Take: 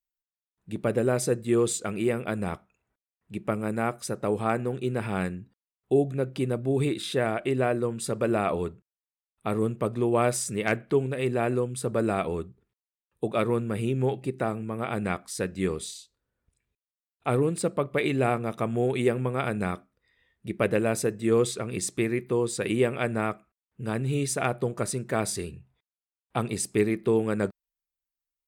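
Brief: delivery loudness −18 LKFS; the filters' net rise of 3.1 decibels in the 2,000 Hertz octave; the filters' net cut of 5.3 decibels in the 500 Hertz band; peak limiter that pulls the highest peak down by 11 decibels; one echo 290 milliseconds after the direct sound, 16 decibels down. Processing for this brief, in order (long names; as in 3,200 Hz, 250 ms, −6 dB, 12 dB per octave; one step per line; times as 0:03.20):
parametric band 500 Hz −7 dB
parametric band 2,000 Hz +4.5 dB
brickwall limiter −20.5 dBFS
single-tap delay 290 ms −16 dB
level +14 dB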